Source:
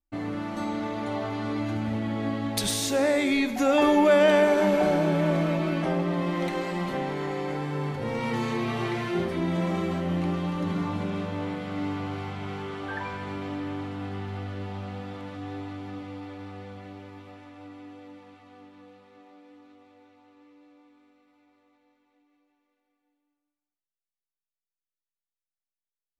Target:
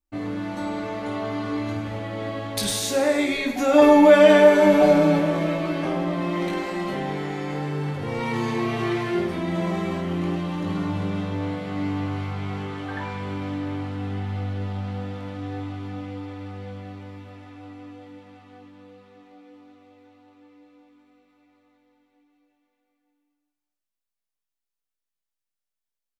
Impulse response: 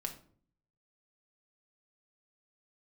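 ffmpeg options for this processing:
-filter_complex "[0:a]asettb=1/sr,asplit=3[a][b][c];[a]atrim=end=3.734[d];[b]atrim=start=3.73:end=5.19,asetpts=PTS-STARTPTS,afade=t=in:d=0.004:c=qsin,afade=t=out:st=1.456:d=0.004:c=qsin,aecho=1:1:6.9:0.79,atrim=end_sample=64386[e];[c]atrim=start=5.186[f];[d][e]acrossfade=d=0.004:c1=hsin:c2=qsin[g];[g][f]acrossfade=d=0.004:c1=qsin:c2=hsin,aecho=1:1:20|52|103.2|185.1|316.2:0.631|0.398|0.251|0.158|0.1"

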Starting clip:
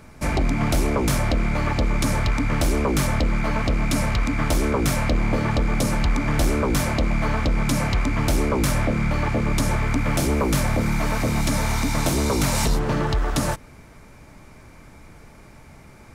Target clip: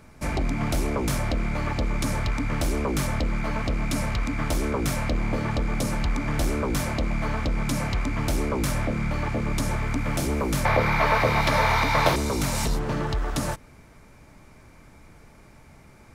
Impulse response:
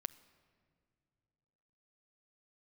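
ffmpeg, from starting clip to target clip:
-filter_complex "[0:a]asettb=1/sr,asplit=3[a][b][c];[a]atrim=end=10.654[d];[b]atrim=start=10.65:end=12.16,asetpts=PTS-STARTPTS,afade=t=in:d=0.004:c=qsin,afade=t=out:st=1.506:d=0.004:c=qsin,equalizer=f=125:t=o:w=1:g=4,equalizer=f=250:t=o:w=1:g=-6,equalizer=f=500:t=o:w=1:g=9,equalizer=f=1k:t=o:w=1:g=10,equalizer=f=2k:t=o:w=1:g=8,equalizer=f=4k:t=o:w=1:g=8,equalizer=f=8k:t=o:w=1:g=-9[e];[c]atrim=start=12.156[f];[d][e]acrossfade=d=0.004:c1=hsin:c2=qsin[g];[g][f]acrossfade=d=0.004:c1=qsin:c2=hsin,volume=-4.5dB"

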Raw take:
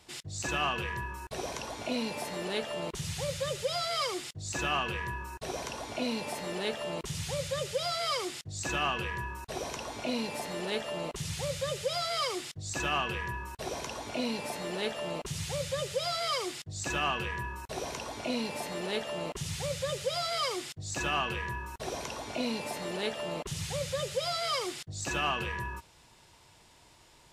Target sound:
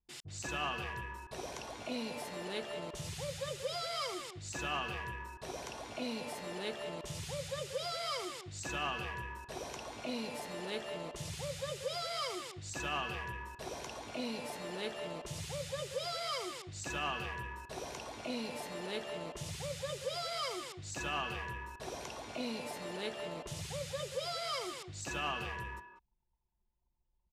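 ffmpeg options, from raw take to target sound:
-filter_complex "[0:a]anlmdn=0.0158,asplit=2[a][b];[b]adelay=190,highpass=300,lowpass=3.4k,asoftclip=type=hard:threshold=-28dB,volume=-8dB[c];[a][c]amix=inputs=2:normalize=0,volume=-6.5dB"

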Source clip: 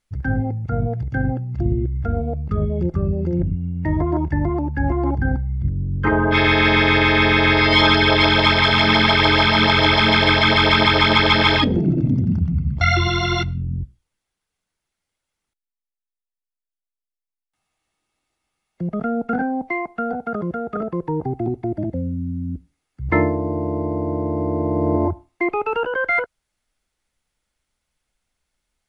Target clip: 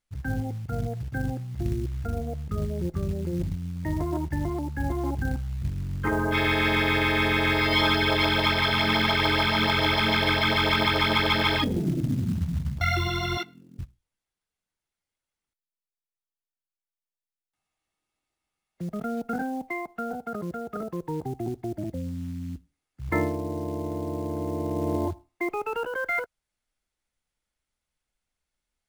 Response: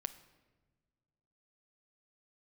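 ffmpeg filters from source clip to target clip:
-filter_complex "[0:a]asettb=1/sr,asplit=3[a][b][c];[a]atrim=end=13.374[d];[b]atrim=start=13.37:end=13.79,asetpts=PTS-STARTPTS,afade=t=in:d=0.004:c=qsin,afade=t=out:st=0.416:d=0.004:c=qsin,highpass=f=260:w=0.5412,highpass=f=260:w=1.3066[e];[c]atrim=start=13.786[f];[d][e]acrossfade=d=0.004:c1=hsin:c2=qsin[g];[g][f]acrossfade=d=0.004:c1=qsin:c2=hsin,acrusher=bits=6:mode=log:mix=0:aa=0.000001,volume=-8dB"

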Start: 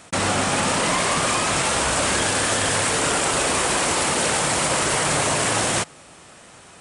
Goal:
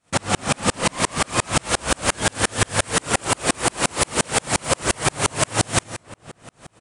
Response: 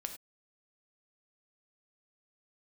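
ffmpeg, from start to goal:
-filter_complex "[0:a]asoftclip=type=hard:threshold=-12dB,asplit=2[a][b];[b]adelay=590,lowpass=f=1.8k:p=1,volume=-19dB,asplit=2[c][d];[d]adelay=590,lowpass=f=1.8k:p=1,volume=0.47,asplit=2[e][f];[f]adelay=590,lowpass=f=1.8k:p=1,volume=0.47,asplit=2[g][h];[h]adelay=590,lowpass=f=1.8k:p=1,volume=0.47[i];[a][c][e][g][i]amix=inputs=5:normalize=0,asplit=2[j][k];[1:a]atrim=start_sample=2205,asetrate=23373,aresample=44100,lowshelf=f=210:g=8.5[l];[k][l]afir=irnorm=-1:irlink=0,volume=1dB[m];[j][m]amix=inputs=2:normalize=0,aeval=exprs='val(0)*pow(10,-39*if(lt(mod(-5.7*n/s,1),2*abs(-5.7)/1000),1-mod(-5.7*n/s,1)/(2*abs(-5.7)/1000),(mod(-5.7*n/s,1)-2*abs(-5.7)/1000)/(1-2*abs(-5.7)/1000))/20)':c=same"

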